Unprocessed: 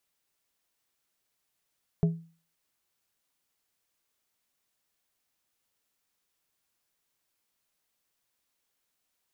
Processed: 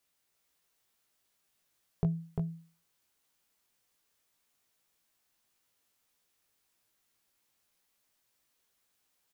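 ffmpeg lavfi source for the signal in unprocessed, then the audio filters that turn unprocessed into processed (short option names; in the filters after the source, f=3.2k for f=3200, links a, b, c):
-f lavfi -i "aevalsrc='0.133*pow(10,-3*t/0.39)*sin(2*PI*165*t)+0.0473*pow(10,-3*t/0.205)*sin(2*PI*412.5*t)+0.0168*pow(10,-3*t/0.148)*sin(2*PI*660*t)':d=0.89:s=44100"
-filter_complex "[0:a]acompressor=threshold=-28dB:ratio=6,asplit=2[a][b];[b]adelay=18,volume=-4.5dB[c];[a][c]amix=inputs=2:normalize=0,asplit=2[d][e];[e]aecho=0:1:347:0.631[f];[d][f]amix=inputs=2:normalize=0"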